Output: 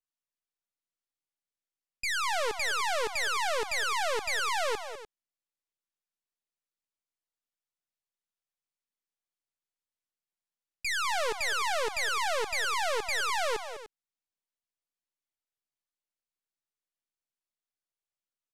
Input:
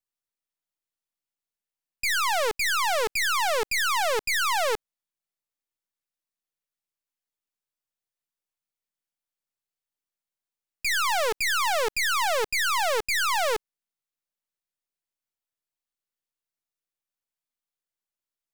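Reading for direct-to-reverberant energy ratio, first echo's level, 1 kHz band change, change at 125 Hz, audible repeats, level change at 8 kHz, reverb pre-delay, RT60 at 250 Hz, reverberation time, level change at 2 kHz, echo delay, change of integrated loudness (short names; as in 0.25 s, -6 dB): none, -11.5 dB, -5.0 dB, n/a, 2, -6.0 dB, none, none, none, -5.0 dB, 0.202 s, -5.5 dB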